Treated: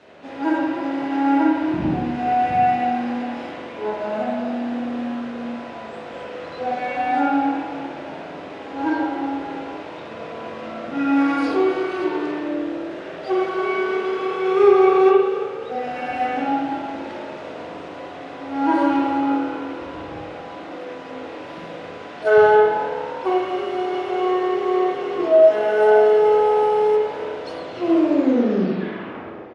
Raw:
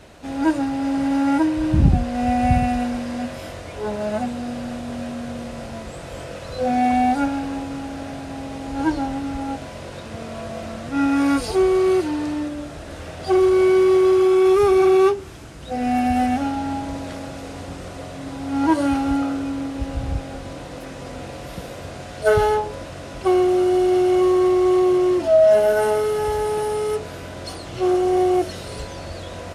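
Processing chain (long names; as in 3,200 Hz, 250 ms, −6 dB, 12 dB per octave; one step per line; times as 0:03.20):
turntable brake at the end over 1.81 s
band-pass filter 250–3,900 Hz
echo with shifted repeats 276 ms, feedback 56%, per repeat +36 Hz, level −15.5 dB
spring reverb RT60 1.2 s, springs 42/54 ms, chirp 65 ms, DRR −3.5 dB
level −3 dB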